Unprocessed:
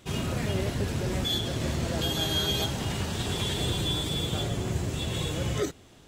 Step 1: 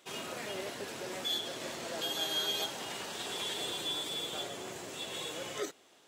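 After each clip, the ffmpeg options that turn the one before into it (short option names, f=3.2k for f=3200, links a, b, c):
-af "highpass=440,volume=-4.5dB"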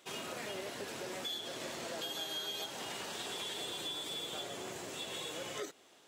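-af "acompressor=threshold=-38dB:ratio=4"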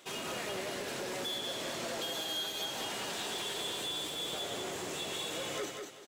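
-filter_complex "[0:a]asoftclip=type=tanh:threshold=-38dB,asplit=2[a][b];[b]aecho=0:1:193|386|579|772:0.562|0.157|0.0441|0.0123[c];[a][c]amix=inputs=2:normalize=0,volume=5dB"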